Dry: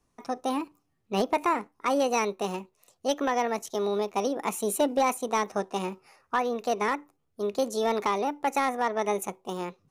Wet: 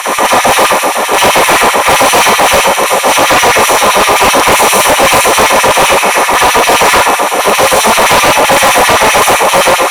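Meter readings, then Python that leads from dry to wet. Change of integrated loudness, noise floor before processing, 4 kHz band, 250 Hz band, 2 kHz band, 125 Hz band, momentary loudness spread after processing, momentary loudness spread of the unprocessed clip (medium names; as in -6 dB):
+22.5 dB, -74 dBFS, +30.0 dB, +13.5 dB, +28.5 dB, no reading, 2 LU, 9 LU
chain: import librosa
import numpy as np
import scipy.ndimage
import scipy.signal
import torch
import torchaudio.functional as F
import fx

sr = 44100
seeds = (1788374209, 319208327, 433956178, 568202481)

p1 = fx.bin_compress(x, sr, power=0.2)
p2 = fx.low_shelf(p1, sr, hz=300.0, db=-11.0)
p3 = fx.rev_schroeder(p2, sr, rt60_s=0.82, comb_ms=32, drr_db=-4.5)
p4 = fx.filter_lfo_highpass(p3, sr, shape='sine', hz=7.7, low_hz=210.0, high_hz=2700.0, q=1.2)
p5 = p4 + fx.echo_single(p4, sr, ms=501, db=-14.0, dry=0)
p6 = fx.fold_sine(p5, sr, drive_db=11, ceiling_db=1.0)
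y = p6 * 10.0 ** (-3.0 / 20.0)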